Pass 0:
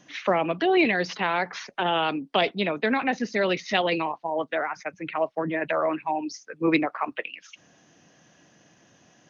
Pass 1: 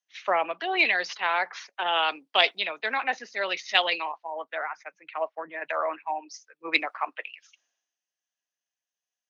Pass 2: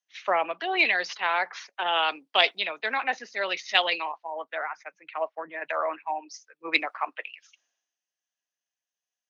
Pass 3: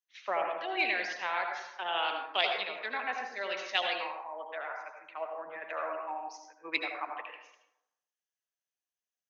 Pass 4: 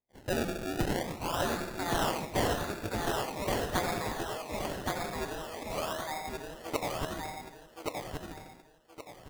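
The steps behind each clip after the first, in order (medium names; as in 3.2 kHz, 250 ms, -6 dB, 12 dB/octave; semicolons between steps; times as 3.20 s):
high-pass 760 Hz 12 dB/octave; three bands expanded up and down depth 100%
no audible change
reverberation RT60 0.85 s, pre-delay 68 ms, DRR 2.5 dB; trim -8.5 dB
decimation with a swept rate 29×, swing 100% 0.44 Hz; feedback delay 1122 ms, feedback 30%, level -3 dB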